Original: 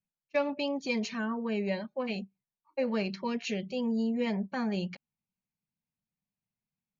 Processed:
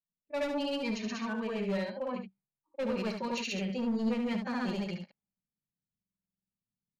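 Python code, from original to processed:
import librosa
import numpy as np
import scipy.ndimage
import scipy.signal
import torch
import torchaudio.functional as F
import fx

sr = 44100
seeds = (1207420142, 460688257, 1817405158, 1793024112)

y = fx.granulator(x, sr, seeds[0], grain_ms=138.0, per_s=16.0, spray_ms=100.0, spread_st=0)
y = np.clip(10.0 ** (29.0 / 20.0) * y, -1.0, 1.0) / 10.0 ** (29.0 / 20.0)
y = fx.env_lowpass(y, sr, base_hz=420.0, full_db=-34.5)
y = fx.room_early_taps(y, sr, ms=(36, 72), db=(-15.0, -6.5))
y = fx.buffer_glitch(y, sr, at_s=(6.01,), block=2048, repeats=10)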